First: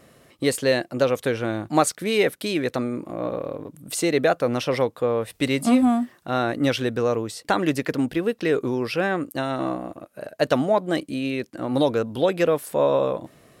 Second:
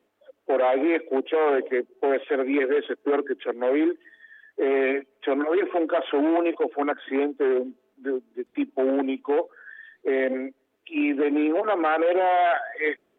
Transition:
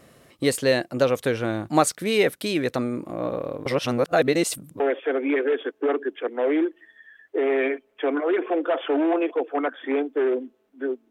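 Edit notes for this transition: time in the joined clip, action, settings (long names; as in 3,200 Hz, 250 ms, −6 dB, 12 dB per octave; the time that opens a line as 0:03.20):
first
0:03.66–0:04.80: reverse
0:04.80: continue with second from 0:02.04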